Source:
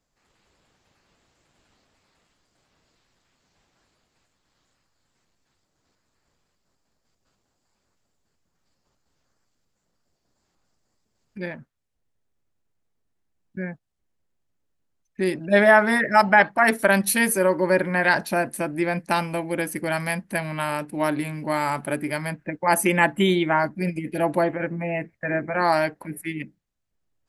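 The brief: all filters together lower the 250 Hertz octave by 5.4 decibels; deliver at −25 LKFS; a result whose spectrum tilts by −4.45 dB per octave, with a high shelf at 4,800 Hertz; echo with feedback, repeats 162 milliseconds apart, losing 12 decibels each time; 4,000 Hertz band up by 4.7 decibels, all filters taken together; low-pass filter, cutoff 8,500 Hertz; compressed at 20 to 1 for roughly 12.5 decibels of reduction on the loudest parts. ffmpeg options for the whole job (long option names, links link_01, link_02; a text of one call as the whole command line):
ffmpeg -i in.wav -af "lowpass=8500,equalizer=frequency=250:width_type=o:gain=-8.5,equalizer=frequency=4000:width_type=o:gain=9,highshelf=frequency=4800:gain=-6,acompressor=threshold=-22dB:ratio=20,aecho=1:1:162|324|486:0.251|0.0628|0.0157,volume=3.5dB" out.wav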